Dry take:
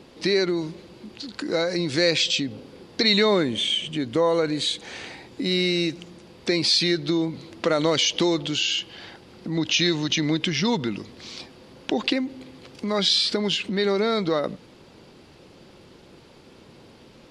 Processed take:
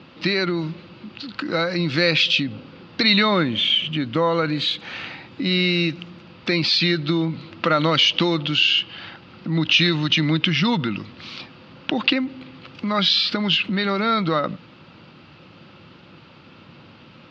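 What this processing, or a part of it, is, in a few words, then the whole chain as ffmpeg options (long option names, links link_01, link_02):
guitar cabinet: -af "highpass=88,equalizer=frequency=100:width_type=q:width=4:gain=5,equalizer=frequency=160:width_type=q:width=4:gain=5,equalizer=frequency=420:width_type=q:width=4:gain=-10,equalizer=frequency=700:width_type=q:width=4:gain=-3,equalizer=frequency=1300:width_type=q:width=4:gain=8,equalizer=frequency=2700:width_type=q:width=4:gain=6,lowpass=frequency=4400:width=0.5412,lowpass=frequency=4400:width=1.3066,volume=3dB"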